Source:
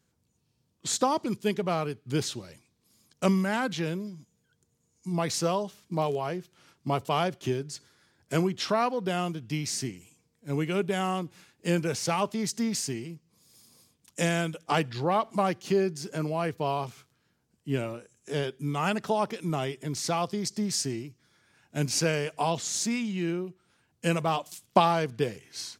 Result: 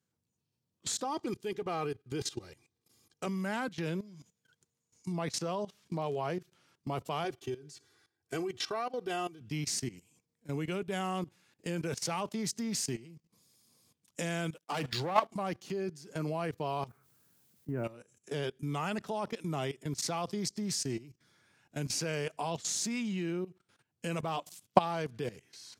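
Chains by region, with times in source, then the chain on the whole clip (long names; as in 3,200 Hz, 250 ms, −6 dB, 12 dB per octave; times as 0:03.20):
0:01.04–0:03.27: high-shelf EQ 4,400 Hz −3 dB + comb filter 2.5 ms, depth 53%
0:03.88–0:06.30: high-shelf EQ 7,800 Hz −8.5 dB + one half of a high-frequency compander encoder only
0:07.24–0:09.41: comb filter 2.6 ms, depth 75% + amplitude tremolo 1.6 Hz, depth 62%
0:14.54–0:15.25: high-pass filter 190 Hz 6 dB per octave + leveller curve on the samples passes 3 + multiband upward and downward expander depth 100%
0:16.87–0:17.83: inverse Chebyshev low-pass filter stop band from 4,200 Hz, stop band 50 dB + background noise blue −67 dBFS
whole clip: high-pass filter 79 Hz 24 dB per octave; output level in coarse steps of 17 dB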